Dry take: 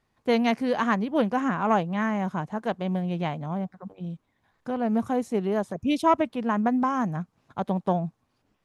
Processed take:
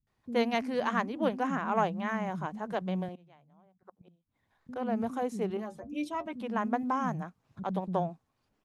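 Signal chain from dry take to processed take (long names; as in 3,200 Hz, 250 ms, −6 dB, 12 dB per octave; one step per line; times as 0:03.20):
0:03.08–0:04.69: gate with flip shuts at −32 dBFS, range −25 dB
0:05.50–0:06.26: stiff-string resonator 70 Hz, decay 0.21 s, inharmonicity 0.008
multiband delay without the direct sound lows, highs 70 ms, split 230 Hz
level −4.5 dB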